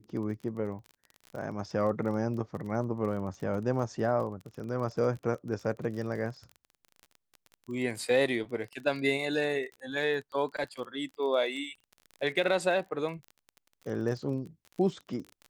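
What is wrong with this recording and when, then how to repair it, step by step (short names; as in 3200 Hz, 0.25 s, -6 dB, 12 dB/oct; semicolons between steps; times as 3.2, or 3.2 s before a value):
crackle 28/s -38 dBFS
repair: de-click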